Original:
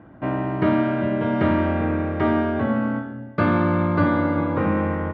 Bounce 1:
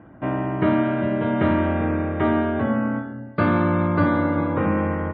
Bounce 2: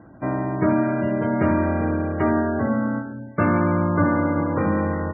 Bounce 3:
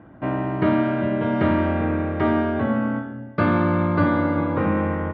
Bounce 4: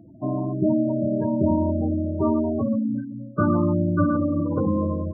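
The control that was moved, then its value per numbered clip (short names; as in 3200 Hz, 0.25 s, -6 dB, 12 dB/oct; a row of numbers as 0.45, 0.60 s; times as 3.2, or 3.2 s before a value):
spectral gate, under each frame's peak: -45, -25, -60, -10 dB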